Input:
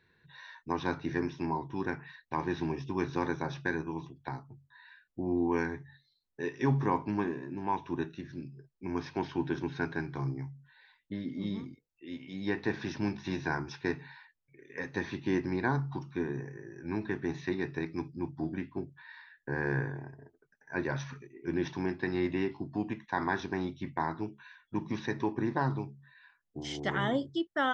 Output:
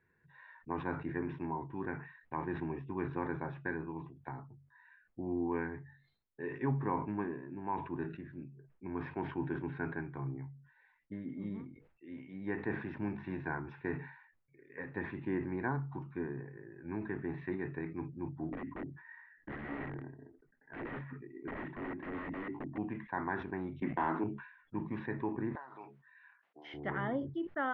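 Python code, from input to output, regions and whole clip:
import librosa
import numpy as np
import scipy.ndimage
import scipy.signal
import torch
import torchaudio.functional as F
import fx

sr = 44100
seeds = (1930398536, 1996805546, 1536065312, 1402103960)

y = fx.chain(x, sr, fx.overflow_wrap(gain_db=32.0),
    fx.air_absorb(metres=270.0),
    fx.small_body(hz=(280.0, 1900.0), ring_ms=25, db=11), at=(18.51, 22.78))
y = fx.chain(y, sr, fx.highpass(hz=200.0, slope=24),
    fx.leveller(passes=2),
    fx.env_flatten(amount_pct=50), at=(23.82, 24.24))
y = fx.chain(y, sr, fx.high_shelf(hz=4100.0, db=9.0),
    fx.over_compress(threshold_db=-34.0, ratio=-0.5),
    fx.highpass(hz=700.0, slope=12), at=(25.55, 26.74))
y = scipy.signal.sosfilt(scipy.signal.butter(4, 2200.0, 'lowpass', fs=sr, output='sos'), y)
y = fx.sustainer(y, sr, db_per_s=92.0)
y = F.gain(torch.from_numpy(y), -5.5).numpy()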